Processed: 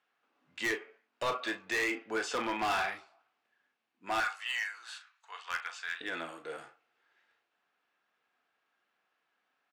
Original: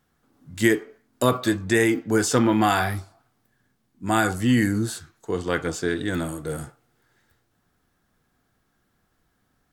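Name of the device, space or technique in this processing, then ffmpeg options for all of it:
megaphone: -filter_complex "[0:a]asettb=1/sr,asplit=3[link_01][link_02][link_03];[link_01]atrim=end=4.204[link_04];[link_02]atrim=start=4.2:end=6.01,asetpts=PTS-STARTPTS,afade=type=in:duration=0.004:curve=qsin,afade=type=out:start_time=1.806:duration=0.004:curve=qsin,highpass=frequency=930:width=0.5412,highpass=frequency=930:width=1.3066[link_05];[link_03]atrim=start=6.006[link_06];[link_04][link_05]acrossfade=duration=0.004:curve1=hsin:curve2=qsin[link_07];[link_07][link_06]acrossfade=duration=0.004:curve1=qsin:curve2=hsin,highpass=630,lowpass=3700,equalizer=frequency=2600:width_type=o:width=0.4:gain=8.5,asoftclip=type=hard:threshold=-22dB,asplit=2[link_08][link_09];[link_09]adelay=36,volume=-11dB[link_10];[link_08][link_10]amix=inputs=2:normalize=0,volume=-5.5dB"

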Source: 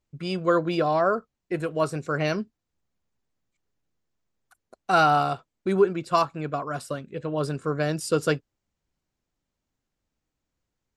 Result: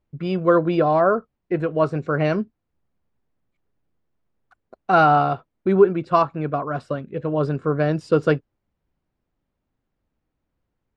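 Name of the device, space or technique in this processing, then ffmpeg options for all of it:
phone in a pocket: -af "lowpass=3900,highshelf=frequency=2100:gain=-10,volume=6dB"

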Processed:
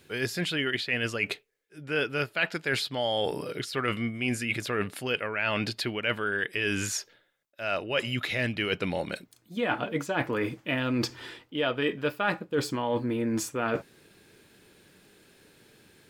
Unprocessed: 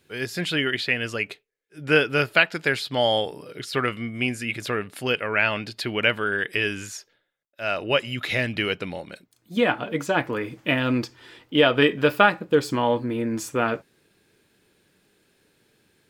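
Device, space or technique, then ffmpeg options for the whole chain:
compression on the reversed sound: -af "areverse,acompressor=threshold=-32dB:ratio=6,areverse,volume=6dB"

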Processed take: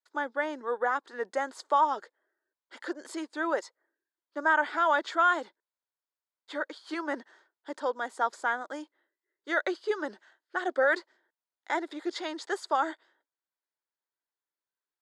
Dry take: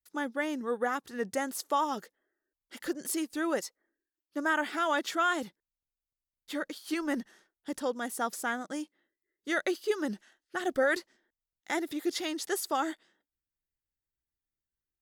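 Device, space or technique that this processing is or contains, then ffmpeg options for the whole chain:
phone speaker on a table: -af "highpass=frequency=330:width=0.5412,highpass=frequency=330:width=1.3066,equalizer=frequency=620:width_type=q:width=4:gain=3,equalizer=frequency=970:width_type=q:width=4:gain=8,equalizer=frequency=1500:width_type=q:width=4:gain=5,equalizer=frequency=2700:width_type=q:width=4:gain=-7,equalizer=frequency=5800:width_type=q:width=4:gain=-10,lowpass=frequency=6600:width=0.5412,lowpass=frequency=6600:width=1.3066"

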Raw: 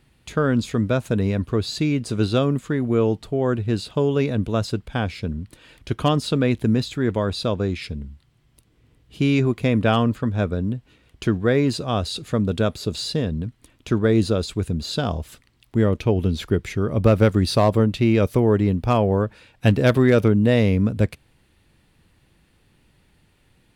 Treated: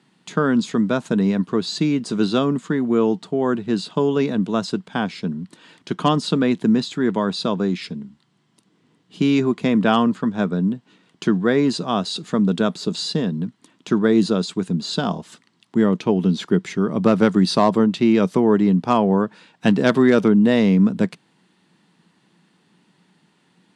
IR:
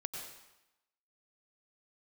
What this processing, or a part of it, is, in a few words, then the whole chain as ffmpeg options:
television speaker: -af "highpass=frequency=180:width=0.5412,highpass=frequency=180:width=1.3066,equalizer=frequency=180:width_type=q:width=4:gain=9,equalizer=frequency=540:width_type=q:width=4:gain=-6,equalizer=frequency=970:width_type=q:width=4:gain=4,equalizer=frequency=2400:width_type=q:width=4:gain=-5,lowpass=frequency=8600:width=0.5412,lowpass=frequency=8600:width=1.3066,volume=2.5dB"

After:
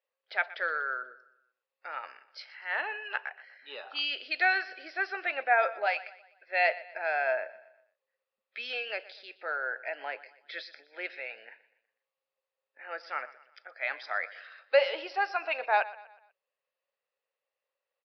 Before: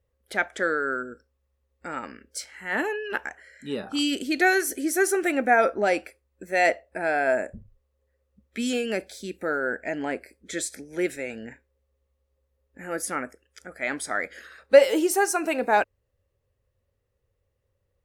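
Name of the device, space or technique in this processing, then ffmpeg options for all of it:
musical greeting card: -filter_complex "[0:a]asettb=1/sr,asplit=3[link_01][link_02][link_03];[link_01]atrim=end=5.864[link_04];[link_02]atrim=start=5.86:end=6.47,asetpts=PTS-STARTPTS,afade=type=in:duration=0.004:curve=qsin,afade=type=out:start_time=0.606:duration=0.004:curve=qsin,lowshelf=frequency=530:width_type=q:width=1.5:gain=-11.5[link_05];[link_03]atrim=start=6.466[link_06];[link_04][link_05]acrossfade=duration=0.004:curve1=hsin:curve2=qsin[link_07];[link_07][link_06]acrossfade=duration=0.004:curve1=qsin:curve2=hsin,aresample=11025,aresample=44100,highpass=frequency=620:width=0.5412,highpass=frequency=620:width=1.3066,equalizer=frequency=2600:width_type=o:width=0.2:gain=6,aecho=1:1:122|244|366|488:0.126|0.0541|0.0233|0.01,volume=-4dB"

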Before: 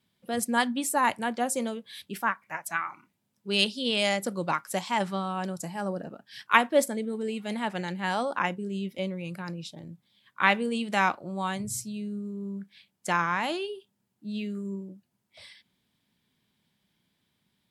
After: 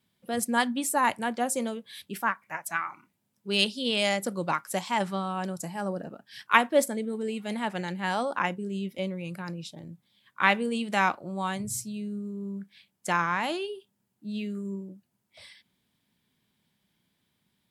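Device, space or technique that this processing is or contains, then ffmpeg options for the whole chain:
exciter from parts: -filter_complex "[0:a]asplit=2[link_01][link_02];[link_02]highpass=frequency=4700:poles=1,asoftclip=type=tanh:threshold=-36dB,highpass=4300,volume=-9.5dB[link_03];[link_01][link_03]amix=inputs=2:normalize=0"

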